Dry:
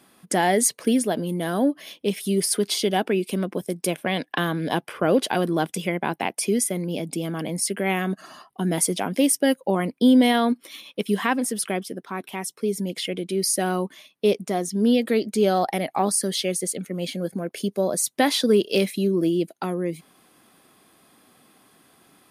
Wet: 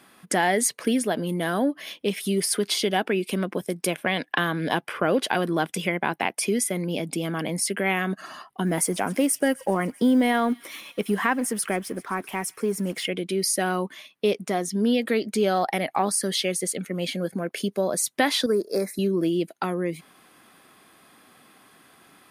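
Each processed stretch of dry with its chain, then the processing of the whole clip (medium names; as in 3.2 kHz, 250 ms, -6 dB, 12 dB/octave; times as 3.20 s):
8.66–13.05 s: companding laws mixed up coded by mu + peaking EQ 3.6 kHz -8.5 dB 0.98 oct + feedback echo behind a high-pass 130 ms, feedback 73%, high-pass 3.1 kHz, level -19 dB
18.46–18.99 s: Butterworth band-stop 3 kHz, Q 0.83 + peaking EQ 66 Hz -13.5 dB 2.8 oct
whole clip: peaking EQ 1.7 kHz +6 dB 1.9 oct; compression 1.5:1, threshold -24 dBFS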